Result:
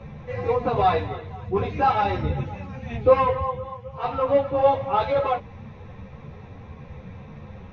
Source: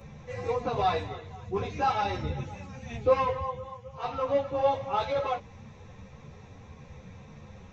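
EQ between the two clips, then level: air absorption 240 m; +7.5 dB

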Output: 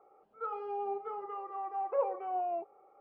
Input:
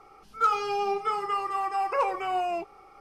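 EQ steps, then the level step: band-pass 570 Hz, Q 2.9; air absorption 260 m; 0.0 dB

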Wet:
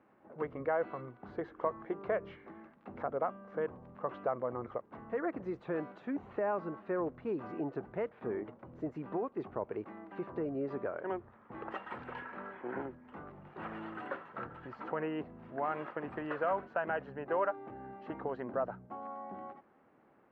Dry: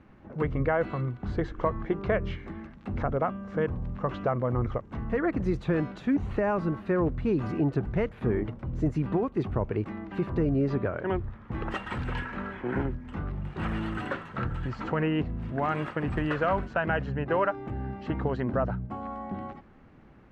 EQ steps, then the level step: HPF 590 Hz 12 dB/oct; tilt -3.5 dB/oct; high shelf 3900 Hz -11 dB; -4.5 dB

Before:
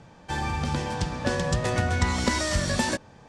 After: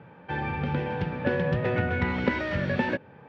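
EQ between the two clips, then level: dynamic EQ 1100 Hz, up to -6 dB, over -44 dBFS, Q 1.7; speaker cabinet 160–2300 Hz, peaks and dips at 220 Hz -6 dB, 320 Hz -6 dB, 680 Hz -10 dB, 1100 Hz -7 dB, 1900 Hz -5 dB; +6.0 dB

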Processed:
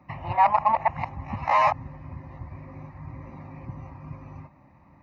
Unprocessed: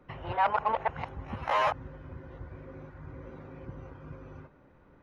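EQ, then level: HPF 77 Hz; high shelf 4100 Hz -6 dB; fixed phaser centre 2200 Hz, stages 8; +8.5 dB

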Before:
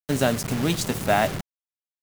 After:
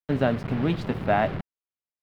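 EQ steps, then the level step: air absorption 410 m; 0.0 dB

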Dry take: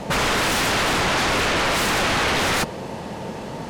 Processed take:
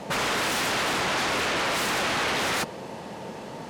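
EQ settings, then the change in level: HPF 180 Hz 6 dB/oct; -5.0 dB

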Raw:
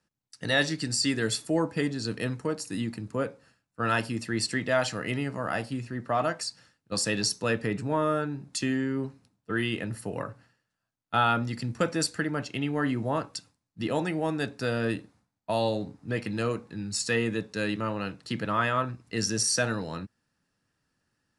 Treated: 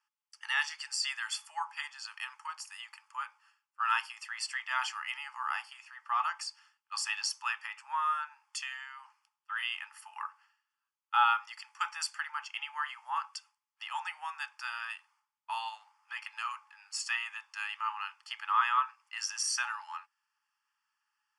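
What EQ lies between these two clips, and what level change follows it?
rippled Chebyshev high-pass 830 Hz, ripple 6 dB; Butterworth band-stop 3900 Hz, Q 3.6; tilt -2 dB/oct; +3.5 dB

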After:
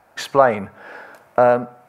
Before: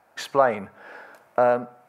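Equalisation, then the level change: low shelf 87 Hz +11 dB; +5.0 dB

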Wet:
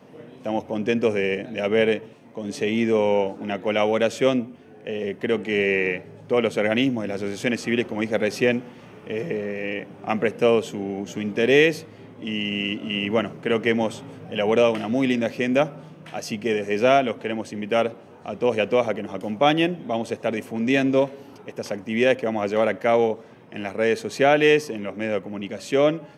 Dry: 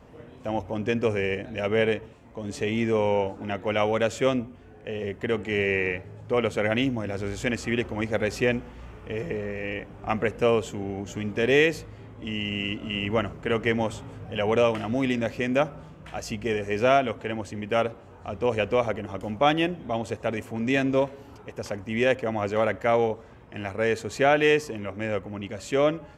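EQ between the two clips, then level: HPF 140 Hz 24 dB/oct; bell 1200 Hz -4.5 dB 1.3 oct; notch 7300 Hz, Q 6.6; +4.5 dB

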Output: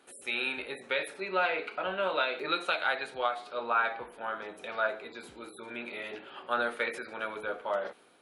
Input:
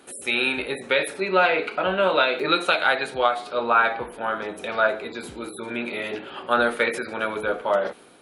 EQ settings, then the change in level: low shelf 370 Hz -8 dB; high shelf 5900 Hz -5.5 dB; -8.0 dB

